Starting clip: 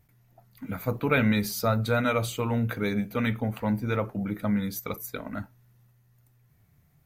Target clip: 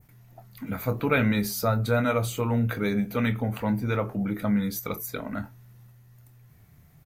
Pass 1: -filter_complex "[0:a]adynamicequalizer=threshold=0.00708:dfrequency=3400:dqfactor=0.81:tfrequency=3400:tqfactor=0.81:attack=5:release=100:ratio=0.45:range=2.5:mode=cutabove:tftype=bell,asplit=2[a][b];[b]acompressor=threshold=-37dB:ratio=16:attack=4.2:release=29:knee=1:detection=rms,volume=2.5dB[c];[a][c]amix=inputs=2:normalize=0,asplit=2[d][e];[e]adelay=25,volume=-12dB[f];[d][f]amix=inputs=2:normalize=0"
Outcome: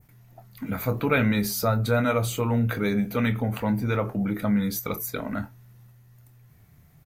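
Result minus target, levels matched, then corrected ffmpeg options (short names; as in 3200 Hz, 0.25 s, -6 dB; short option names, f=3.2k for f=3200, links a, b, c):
compressor: peak gain reduction -8.5 dB
-filter_complex "[0:a]adynamicequalizer=threshold=0.00708:dfrequency=3400:dqfactor=0.81:tfrequency=3400:tqfactor=0.81:attack=5:release=100:ratio=0.45:range=2.5:mode=cutabove:tftype=bell,asplit=2[a][b];[b]acompressor=threshold=-46dB:ratio=16:attack=4.2:release=29:knee=1:detection=rms,volume=2.5dB[c];[a][c]amix=inputs=2:normalize=0,asplit=2[d][e];[e]adelay=25,volume=-12dB[f];[d][f]amix=inputs=2:normalize=0"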